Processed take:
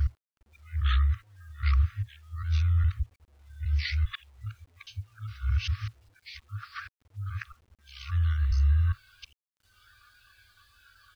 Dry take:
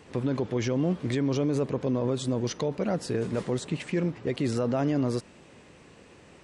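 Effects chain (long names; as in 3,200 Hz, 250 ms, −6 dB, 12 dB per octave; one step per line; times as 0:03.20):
reversed piece by piece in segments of 234 ms
healed spectral selection 0:04.86–0:05.12, 3,100–7,300 Hz after
high-shelf EQ 2,100 Hz +10 dB
far-end echo of a speakerphone 290 ms, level −20 dB
wrong playback speed 78 rpm record played at 45 rpm
volume swells 601 ms
spectral tilt −3 dB per octave
noise reduction from a noise print of the clip's start 21 dB
brick-wall band-stop 110–1,100 Hz
bit reduction 11 bits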